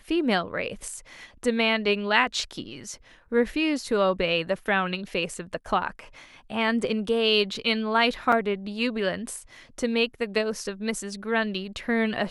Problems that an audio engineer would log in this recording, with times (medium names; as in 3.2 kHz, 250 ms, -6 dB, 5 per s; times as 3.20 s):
8.32 s: dropout 3.8 ms